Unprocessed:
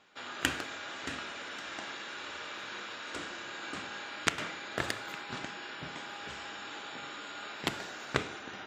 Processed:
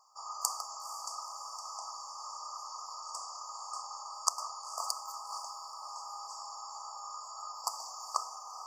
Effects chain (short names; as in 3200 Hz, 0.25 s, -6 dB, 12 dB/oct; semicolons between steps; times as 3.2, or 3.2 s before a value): inverse Chebyshev high-pass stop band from 360 Hz, stop band 50 dB; FFT band-reject 1300–4500 Hz; diffused feedback echo 0.477 s, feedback 42%, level -14 dB; gain +7 dB